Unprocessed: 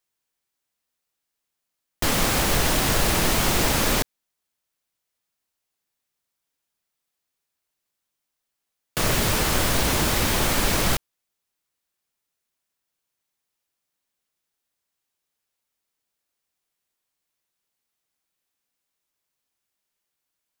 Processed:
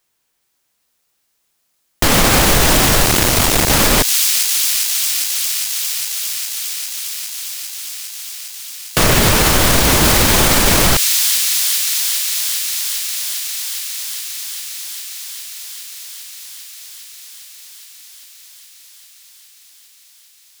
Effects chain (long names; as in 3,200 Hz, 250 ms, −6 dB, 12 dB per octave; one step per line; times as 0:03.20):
0:03.05–0:03.70: sub-harmonics by changed cycles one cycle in 2, muted
delay with a high-pass on its return 405 ms, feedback 84%, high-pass 4,000 Hz, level −4 dB
boost into a limiter +14 dB
level −1 dB